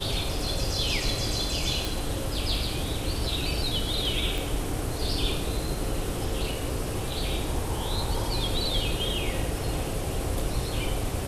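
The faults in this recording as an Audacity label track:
1.850000	1.850000	pop
4.380000	4.380000	pop

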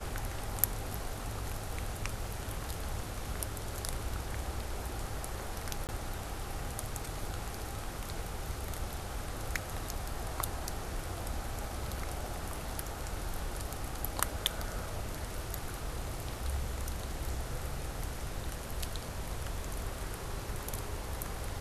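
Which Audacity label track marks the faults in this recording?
5.870000	5.890000	gap 18 ms

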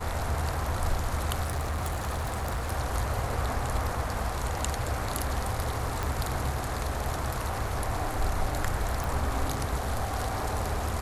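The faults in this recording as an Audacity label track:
1.420000	2.720000	clipped -26.5 dBFS
6.030000	6.030000	pop
9.040000	9.040000	pop

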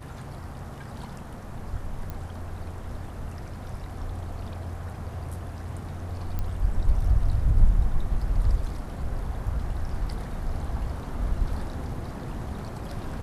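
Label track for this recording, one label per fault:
2.100000	2.100000	pop -21 dBFS
6.390000	6.390000	pop -18 dBFS

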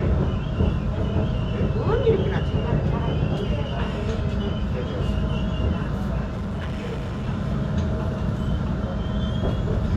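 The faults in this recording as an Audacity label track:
6.260000	7.290000	clipped -25 dBFS

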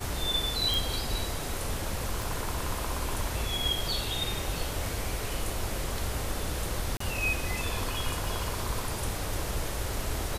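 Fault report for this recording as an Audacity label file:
0.740000	0.740000	pop
2.220000	2.220000	pop
6.970000	7.000000	gap 34 ms

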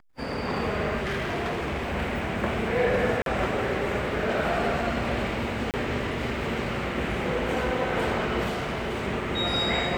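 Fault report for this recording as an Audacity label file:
0.970000	1.910000	clipped -25.5 dBFS
3.220000	3.260000	gap 42 ms
5.710000	5.740000	gap 28 ms
8.480000	9.060000	clipped -26 dBFS

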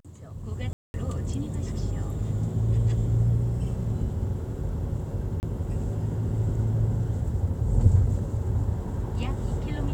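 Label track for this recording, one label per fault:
0.730000	0.940000	gap 0.211 s
5.400000	5.430000	gap 29 ms

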